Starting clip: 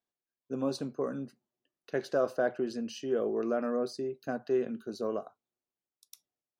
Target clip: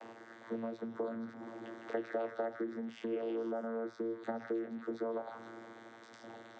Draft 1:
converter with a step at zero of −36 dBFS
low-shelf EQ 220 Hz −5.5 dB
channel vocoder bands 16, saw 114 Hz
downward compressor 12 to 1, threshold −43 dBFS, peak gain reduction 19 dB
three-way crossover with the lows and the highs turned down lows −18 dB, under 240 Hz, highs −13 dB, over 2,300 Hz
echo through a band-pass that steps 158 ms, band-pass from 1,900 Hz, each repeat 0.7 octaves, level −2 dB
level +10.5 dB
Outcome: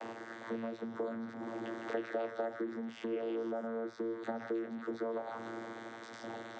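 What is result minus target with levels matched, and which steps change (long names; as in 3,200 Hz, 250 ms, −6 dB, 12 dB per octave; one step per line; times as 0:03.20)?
converter with a step at zero: distortion +6 dB
change: converter with a step at zero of −43 dBFS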